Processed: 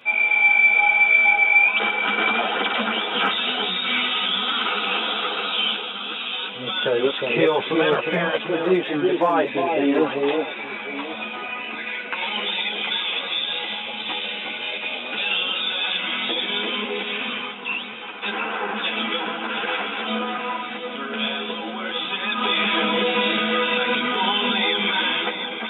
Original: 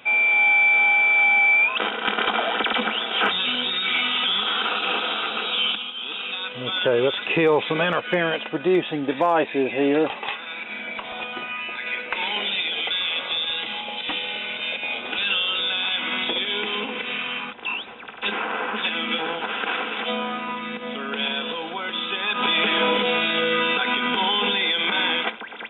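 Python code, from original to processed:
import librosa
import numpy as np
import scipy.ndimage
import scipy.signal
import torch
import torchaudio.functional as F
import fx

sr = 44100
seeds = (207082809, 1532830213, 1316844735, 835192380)

y = scipy.signal.sosfilt(scipy.signal.butter(2, 100.0, 'highpass', fs=sr, output='sos'), x)
y = fx.echo_alternate(y, sr, ms=360, hz=890.0, feedback_pct=52, wet_db=-2.5)
y = fx.ensemble(y, sr)
y = y * librosa.db_to_amplitude(2.5)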